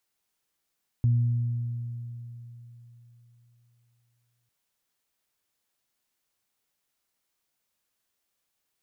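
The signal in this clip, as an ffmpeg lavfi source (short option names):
-f lavfi -i "aevalsrc='0.126*pow(10,-3*t/3.65)*sin(2*PI*119*t)+0.0158*pow(10,-3*t/2.69)*sin(2*PI*238*t)':d=3.45:s=44100"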